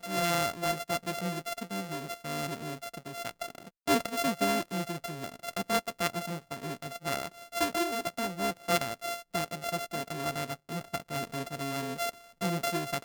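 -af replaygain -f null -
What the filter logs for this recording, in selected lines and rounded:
track_gain = +12.4 dB
track_peak = 0.163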